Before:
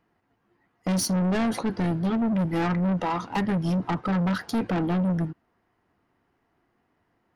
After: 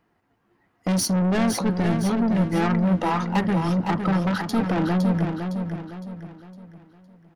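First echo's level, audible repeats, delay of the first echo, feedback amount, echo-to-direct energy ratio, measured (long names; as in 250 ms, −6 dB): −6.5 dB, 4, 510 ms, 40%, −5.5 dB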